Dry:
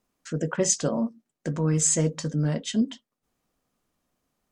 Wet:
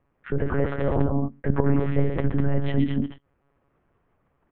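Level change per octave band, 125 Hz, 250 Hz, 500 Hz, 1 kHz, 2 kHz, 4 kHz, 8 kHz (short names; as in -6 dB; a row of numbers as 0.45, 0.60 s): +3.5 dB, +2.0 dB, +3.0 dB, +5.5 dB, +3.0 dB, -10.5 dB, under -40 dB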